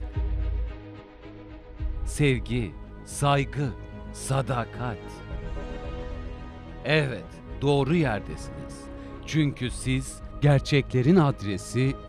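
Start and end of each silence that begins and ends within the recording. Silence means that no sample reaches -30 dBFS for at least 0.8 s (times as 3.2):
0.72–1.8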